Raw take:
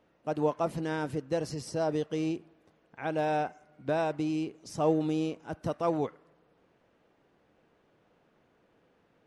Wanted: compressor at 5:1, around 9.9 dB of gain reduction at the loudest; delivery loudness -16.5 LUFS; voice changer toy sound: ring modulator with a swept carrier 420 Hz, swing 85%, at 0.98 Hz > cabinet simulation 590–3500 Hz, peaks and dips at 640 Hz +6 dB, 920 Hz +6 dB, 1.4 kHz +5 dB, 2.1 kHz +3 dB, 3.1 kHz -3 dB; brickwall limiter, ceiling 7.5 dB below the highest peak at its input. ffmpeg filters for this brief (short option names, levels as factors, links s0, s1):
-af "acompressor=threshold=0.0224:ratio=5,alimiter=level_in=2.24:limit=0.0631:level=0:latency=1,volume=0.447,aeval=exprs='val(0)*sin(2*PI*420*n/s+420*0.85/0.98*sin(2*PI*0.98*n/s))':c=same,highpass=590,equalizer=f=640:t=q:w=4:g=6,equalizer=f=920:t=q:w=4:g=6,equalizer=f=1400:t=q:w=4:g=5,equalizer=f=2100:t=q:w=4:g=3,equalizer=f=3100:t=q:w=4:g=-3,lowpass=f=3500:w=0.5412,lowpass=f=3500:w=1.3066,volume=18.8"